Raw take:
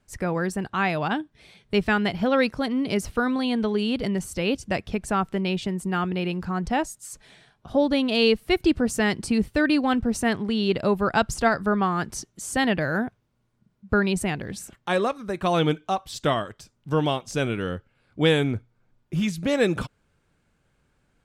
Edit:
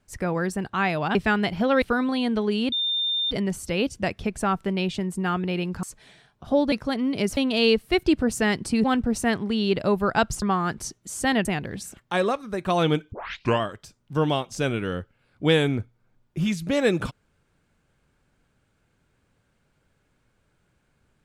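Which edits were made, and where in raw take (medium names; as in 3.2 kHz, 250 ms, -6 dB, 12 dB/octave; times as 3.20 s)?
1.15–1.77 s: delete
2.44–3.09 s: move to 7.95 s
3.99 s: add tone 3.61 kHz -22 dBFS 0.59 s
6.51–7.06 s: delete
9.42–9.83 s: delete
11.41–11.74 s: delete
12.77–14.21 s: delete
15.88 s: tape start 0.49 s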